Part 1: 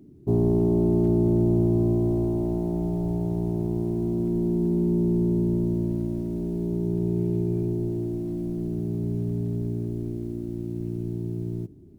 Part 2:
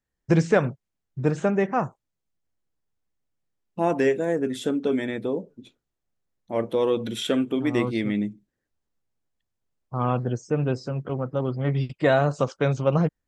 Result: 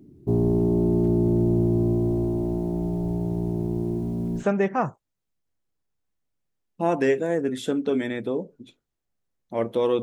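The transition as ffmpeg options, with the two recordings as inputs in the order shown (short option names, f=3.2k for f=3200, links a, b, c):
-filter_complex "[0:a]asettb=1/sr,asplit=3[a][b][c];[a]atrim=end=3.984[d];[b]atrim=start=3.98:end=4.45,asetpts=PTS-STARTPTS,afade=t=in:d=0.004:c=qsin,afade=t=out:st=0.466:d=0.004:c=qsin,bandreject=f=50:t=h:w=6,bandreject=f=100:t=h:w=6,bandreject=f=150:t=h:w=6,bandreject=f=200:t=h:w=6,bandreject=f=250:t=h:w=6,bandreject=f=300:t=h:w=6,bandreject=f=350:t=h:w=6,bandreject=f=400:t=h:w=6,bandreject=f=450:t=h:w=6[e];[c]atrim=start=4.446[f];[d][e]acrossfade=d=0.004:c1=hsin:c2=qsin[g];[g][f]acrossfade=d=0.004:c1=qsin:c2=hsin,apad=whole_dur=10.02,atrim=end=10.02,atrim=end=4.45,asetpts=PTS-STARTPTS[h];[1:a]atrim=start=1.33:end=7,asetpts=PTS-STARTPTS[i];[h][i]acrossfade=d=0.1:c1=tri:c2=tri"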